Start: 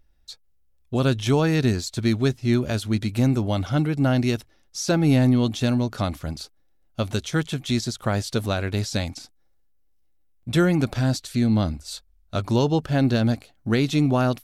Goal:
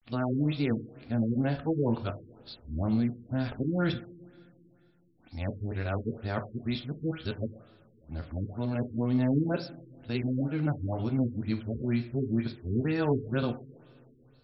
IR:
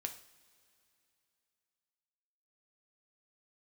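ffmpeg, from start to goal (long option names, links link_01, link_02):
-filter_complex "[0:a]areverse[link_01];[1:a]atrim=start_sample=2205[link_02];[link_01][link_02]afir=irnorm=-1:irlink=0,afftfilt=real='re*lt(b*sr/1024,460*pow(5600/460,0.5+0.5*sin(2*PI*2.1*pts/sr)))':imag='im*lt(b*sr/1024,460*pow(5600/460,0.5+0.5*sin(2*PI*2.1*pts/sr)))':win_size=1024:overlap=0.75,volume=-6dB"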